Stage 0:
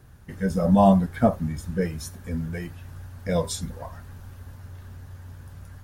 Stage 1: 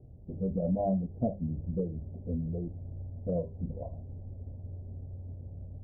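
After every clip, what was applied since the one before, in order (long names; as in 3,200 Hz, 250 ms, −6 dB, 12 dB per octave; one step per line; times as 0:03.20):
Butterworth low-pass 680 Hz 48 dB per octave
mains-hum notches 50/100/150/200 Hz
downward compressor 2.5 to 1, threshold −31 dBFS, peak gain reduction 11.5 dB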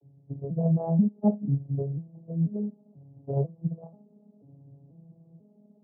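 vocoder with an arpeggio as carrier minor triad, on C#3, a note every 490 ms
expander for the loud parts 1.5 to 1, over −45 dBFS
level +9 dB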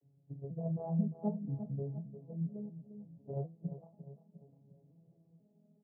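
repeating echo 351 ms, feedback 45%, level −11.5 dB
flanger 0.44 Hz, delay 3.8 ms, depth 9.2 ms, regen +60%
level −6.5 dB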